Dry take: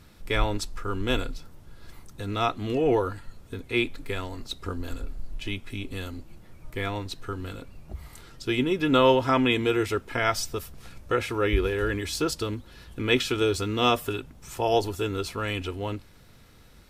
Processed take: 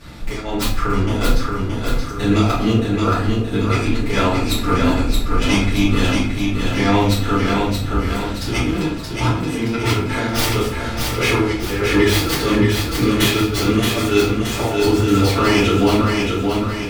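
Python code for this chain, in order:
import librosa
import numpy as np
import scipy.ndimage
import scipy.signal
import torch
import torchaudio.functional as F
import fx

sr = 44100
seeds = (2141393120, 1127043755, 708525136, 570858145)

y = fx.tracing_dist(x, sr, depth_ms=0.35)
y = fx.high_shelf(y, sr, hz=11000.0, db=-10.5)
y = fx.over_compress(y, sr, threshold_db=-30.0, ratio=-0.5)
y = fx.highpass(y, sr, hz=83.0, slope=6)
y = fx.echo_feedback(y, sr, ms=624, feedback_pct=49, wet_db=-4.0)
y = fx.room_shoebox(y, sr, seeds[0], volume_m3=69.0, walls='mixed', distance_m=2.5)
y = F.gain(torch.from_numpy(y), 2.0).numpy()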